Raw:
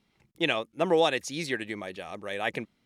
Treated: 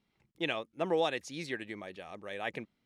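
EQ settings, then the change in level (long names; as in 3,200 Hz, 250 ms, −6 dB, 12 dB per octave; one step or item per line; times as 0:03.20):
high-shelf EQ 7,300 Hz −7.5 dB
−6.5 dB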